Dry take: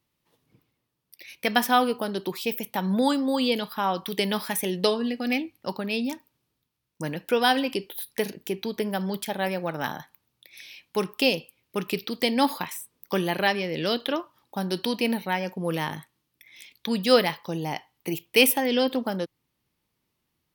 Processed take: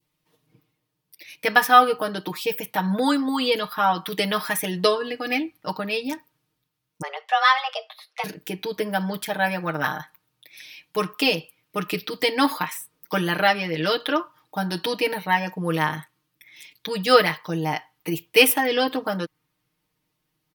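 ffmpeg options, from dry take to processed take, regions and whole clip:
ffmpeg -i in.wav -filter_complex "[0:a]asettb=1/sr,asplit=3[link_01][link_02][link_03];[link_01]atrim=end=7.024[link_04];[link_02]atrim=start=7.02:end=8.24,asetpts=PTS-STARTPTS,afade=type=in:duration=0.004:curve=qsin,afade=type=out:start_time=1.216:duration=0.004:curve=qsin,afreqshift=270,highpass=790,lowpass=4400[link_05];[link_03]atrim=start=8.236[link_06];[link_04][link_05]acrossfade=duration=0.004:curve1=hsin:curve2=qsin[link_07];[link_07][link_06]acrossfade=duration=0.004:curve1=qsin:curve2=hsin,aecho=1:1:6.5:0.92,adynamicequalizer=threshold=0.0112:dfrequency=1400:dqfactor=1.3:tfrequency=1400:tqfactor=1.3:attack=5:release=100:ratio=0.375:range=4:mode=boostabove:tftype=bell,volume=-1dB" out.wav

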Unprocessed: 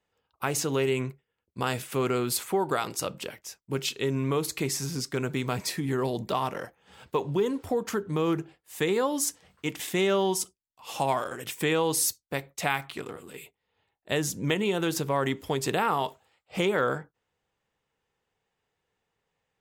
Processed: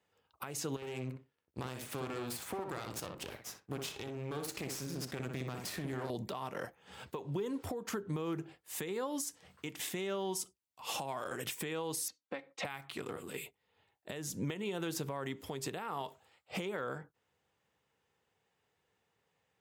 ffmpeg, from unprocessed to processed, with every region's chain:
ffmpeg -i in.wav -filter_complex "[0:a]asettb=1/sr,asplit=3[link_01][link_02][link_03];[link_01]atrim=end=0.764[link_04];[link_02]atrim=start=0.76:end=6.1,asetpts=PTS-STARTPTS,afade=type=in:duration=0.004:curve=qsin,afade=type=out:start_time=5.336:duration=0.004:curve=qsin,acompressor=threshold=-32dB:ratio=4:attack=3.2:release=140:knee=1:detection=peak,aeval=exprs='max(val(0),0)':channel_layout=same,asplit=2[link_05][link_06];[link_06]adelay=62,lowpass=frequency=1900:poles=1,volume=-4dB,asplit=2[link_07][link_08];[link_08]adelay=62,lowpass=frequency=1900:poles=1,volume=0.18,asplit=2[link_09][link_10];[link_10]adelay=62,lowpass=frequency=1900:poles=1,volume=0.18[link_11];[link_05][link_07][link_09][link_11]amix=inputs=4:normalize=0,atrim=end_sample=235494[link_12];[link_03]atrim=start=6.096[link_13];[link_04][link_12]acrossfade=duration=0.004:curve1=hsin:curve2=qsin[link_14];[link_14][link_13]acrossfade=duration=0.004:curve1=qsin:curve2=hsin,asettb=1/sr,asplit=3[link_15][link_16][link_17];[link_15]atrim=end=12.084[link_18];[link_16]atrim=start=12.08:end=12.65,asetpts=PTS-STARTPTS,afade=type=in:duration=0.004:curve=qsin,afade=type=out:start_time=0.566:duration=0.004:curve=qsin,highpass=230,lowpass=3200,aecho=1:1:3.8:0.63,atrim=end_sample=25137[link_19];[link_17]atrim=start=12.646[link_20];[link_18][link_19]acrossfade=duration=0.004:curve1=hsin:curve2=qsin[link_21];[link_21][link_20]acrossfade=duration=0.004:curve1=qsin:curve2=hsin,acompressor=threshold=-32dB:ratio=6,highpass=frequency=65:width=0.5412,highpass=frequency=65:width=1.3066,alimiter=level_in=4dB:limit=-24dB:level=0:latency=1:release=355,volume=-4dB,volume=1dB" out.wav

